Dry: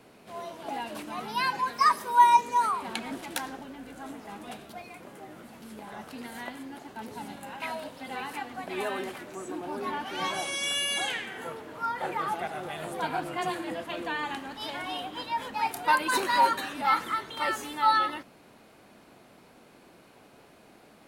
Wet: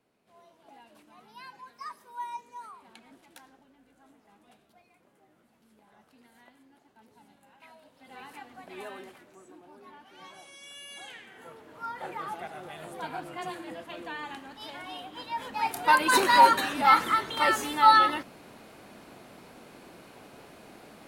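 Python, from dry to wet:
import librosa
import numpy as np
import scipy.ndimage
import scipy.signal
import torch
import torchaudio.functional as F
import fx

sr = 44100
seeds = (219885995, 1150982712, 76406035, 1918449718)

y = fx.gain(x, sr, db=fx.line((7.82, -19.0), (8.23, -9.5), (8.87, -9.5), (9.78, -18.0), (10.69, -18.0), (11.88, -6.0), (15.05, -6.0), (16.18, 5.0)))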